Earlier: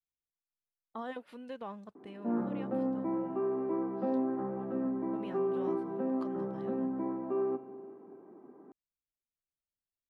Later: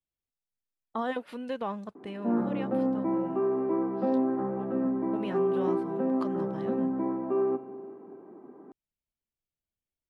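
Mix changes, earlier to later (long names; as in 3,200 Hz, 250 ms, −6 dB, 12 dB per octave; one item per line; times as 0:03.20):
speech +9.0 dB
background +5.0 dB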